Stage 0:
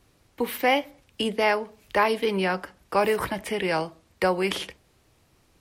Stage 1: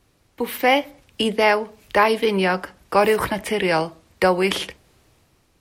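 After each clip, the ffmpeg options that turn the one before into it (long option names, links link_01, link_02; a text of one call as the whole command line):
ffmpeg -i in.wav -af "dynaudnorm=framelen=120:gausssize=9:maxgain=6dB" out.wav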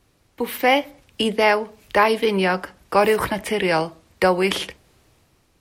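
ffmpeg -i in.wav -af anull out.wav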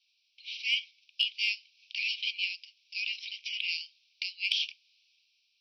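ffmpeg -i in.wav -af "asuperpass=centerf=3700:order=20:qfactor=1.1,acontrast=66,volume=-8dB" out.wav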